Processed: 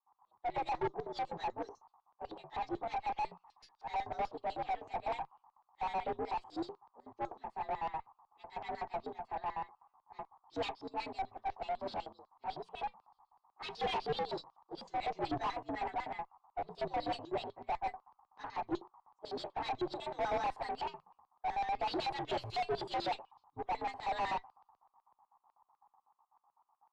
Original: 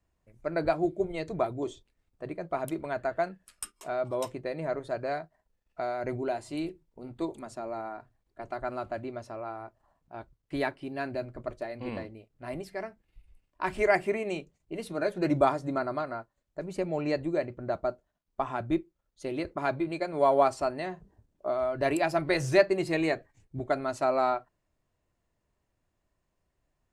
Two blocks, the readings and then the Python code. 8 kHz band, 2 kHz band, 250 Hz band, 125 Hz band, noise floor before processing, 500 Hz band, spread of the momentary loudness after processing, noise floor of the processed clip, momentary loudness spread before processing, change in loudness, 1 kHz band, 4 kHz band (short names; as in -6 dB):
under -15 dB, -10.5 dB, -13.0 dB, -13.5 dB, -79 dBFS, -12.5 dB, 11 LU, under -85 dBFS, 16 LU, -8.5 dB, -2.5 dB, -1.0 dB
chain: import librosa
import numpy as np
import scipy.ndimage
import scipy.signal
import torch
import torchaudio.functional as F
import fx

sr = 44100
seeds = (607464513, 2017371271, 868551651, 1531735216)

y = fx.partial_stretch(x, sr, pct=122)
y = fx.high_shelf(y, sr, hz=4900.0, db=12.0)
y = fx.notch(y, sr, hz=1400.0, q=5.7)
y = fx.dmg_noise_band(y, sr, seeds[0], low_hz=760.0, high_hz=1200.0, level_db=-65.0)
y = fx.filter_lfo_bandpass(y, sr, shape='square', hz=8.0, low_hz=830.0, high_hz=4700.0, q=2.8)
y = fx.tube_stage(y, sr, drive_db=46.0, bias=0.3)
y = fx.spacing_loss(y, sr, db_at_10k=32)
y = fx.band_widen(y, sr, depth_pct=70)
y = y * 10.0 ** (16.0 / 20.0)